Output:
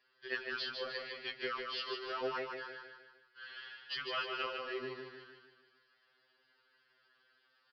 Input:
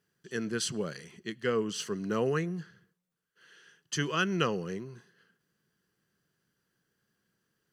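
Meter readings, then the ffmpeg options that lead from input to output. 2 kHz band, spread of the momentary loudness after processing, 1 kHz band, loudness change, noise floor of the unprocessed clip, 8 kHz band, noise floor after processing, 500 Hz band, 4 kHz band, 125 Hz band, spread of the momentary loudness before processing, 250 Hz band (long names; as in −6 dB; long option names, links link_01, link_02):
−3.0 dB, 15 LU, −3.5 dB, −7.5 dB, −82 dBFS, below −30 dB, −74 dBFS, −8.5 dB, −1.5 dB, −25.5 dB, 12 LU, −17.5 dB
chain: -af "highpass=640,acompressor=threshold=-46dB:ratio=4,aresample=11025,acrusher=bits=4:mode=log:mix=0:aa=0.000001,aresample=44100,aecho=1:1:152|304|456|608|760|912:0.562|0.27|0.13|0.0622|0.0299|0.0143,afftfilt=real='re*2.45*eq(mod(b,6),0)':imag='im*2.45*eq(mod(b,6),0)':win_size=2048:overlap=0.75,volume=11dB"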